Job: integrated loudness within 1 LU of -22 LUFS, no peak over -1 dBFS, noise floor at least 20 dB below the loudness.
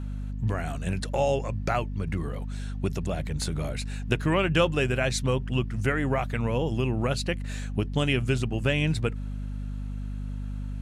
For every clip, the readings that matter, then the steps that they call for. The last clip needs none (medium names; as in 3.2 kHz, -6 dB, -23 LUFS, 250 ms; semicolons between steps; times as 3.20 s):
hum 50 Hz; highest harmonic 250 Hz; hum level -30 dBFS; loudness -28.5 LUFS; peak level -8.0 dBFS; loudness target -22.0 LUFS
-> de-hum 50 Hz, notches 5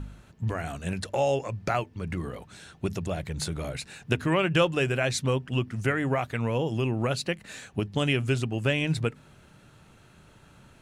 hum not found; loudness -28.5 LUFS; peak level -8.5 dBFS; loudness target -22.0 LUFS
-> trim +6.5 dB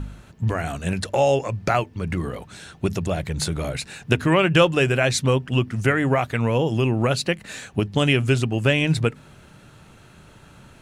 loudness -22.0 LUFS; peak level -2.0 dBFS; noise floor -49 dBFS